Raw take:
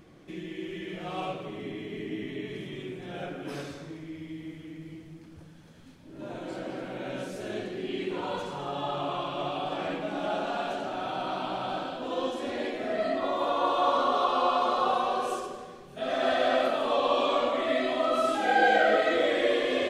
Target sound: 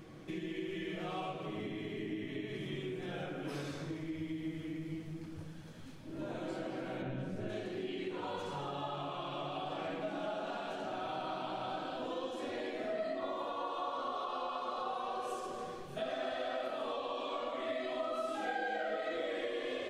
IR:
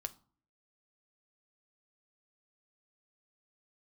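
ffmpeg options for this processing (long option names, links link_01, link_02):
-filter_complex "[0:a]asplit=3[link_01][link_02][link_03];[link_01]afade=type=out:start_time=7.01:duration=0.02[link_04];[link_02]bass=frequency=250:gain=14,treble=frequency=4000:gain=-12,afade=type=in:start_time=7.01:duration=0.02,afade=type=out:start_time=7.48:duration=0.02[link_05];[link_03]afade=type=in:start_time=7.48:duration=0.02[link_06];[link_04][link_05][link_06]amix=inputs=3:normalize=0,acompressor=threshold=-39dB:ratio=5[link_07];[1:a]atrim=start_sample=2205[link_08];[link_07][link_08]afir=irnorm=-1:irlink=0,volume=3.5dB"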